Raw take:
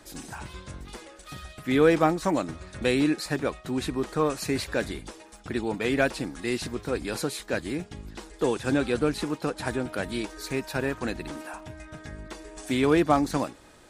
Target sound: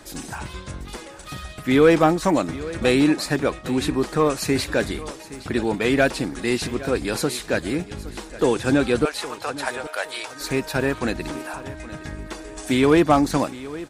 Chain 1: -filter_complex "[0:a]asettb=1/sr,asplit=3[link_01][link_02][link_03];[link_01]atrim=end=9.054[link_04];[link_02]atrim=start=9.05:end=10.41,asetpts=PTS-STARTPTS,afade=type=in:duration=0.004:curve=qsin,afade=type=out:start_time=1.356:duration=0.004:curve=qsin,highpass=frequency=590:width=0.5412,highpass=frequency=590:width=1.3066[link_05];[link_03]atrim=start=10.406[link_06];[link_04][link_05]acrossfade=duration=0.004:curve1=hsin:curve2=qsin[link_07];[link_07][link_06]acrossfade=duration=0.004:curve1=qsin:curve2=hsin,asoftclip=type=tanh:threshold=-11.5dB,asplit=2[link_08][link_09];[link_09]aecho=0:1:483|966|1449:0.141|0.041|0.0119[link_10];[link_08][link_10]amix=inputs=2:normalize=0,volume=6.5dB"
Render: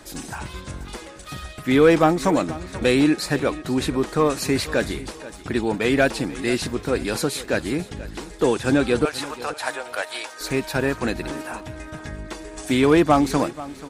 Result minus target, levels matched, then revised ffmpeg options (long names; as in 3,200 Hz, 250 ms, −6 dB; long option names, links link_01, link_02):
echo 334 ms early
-filter_complex "[0:a]asettb=1/sr,asplit=3[link_01][link_02][link_03];[link_01]atrim=end=9.054[link_04];[link_02]atrim=start=9.05:end=10.41,asetpts=PTS-STARTPTS,afade=type=in:duration=0.004:curve=qsin,afade=type=out:start_time=1.356:duration=0.004:curve=qsin,highpass=frequency=590:width=0.5412,highpass=frequency=590:width=1.3066[link_05];[link_03]atrim=start=10.406[link_06];[link_04][link_05]acrossfade=duration=0.004:curve1=hsin:curve2=qsin[link_07];[link_07][link_06]acrossfade=duration=0.004:curve1=qsin:curve2=hsin,asoftclip=type=tanh:threshold=-11.5dB,asplit=2[link_08][link_09];[link_09]aecho=0:1:817|1634|2451:0.141|0.041|0.0119[link_10];[link_08][link_10]amix=inputs=2:normalize=0,volume=6.5dB"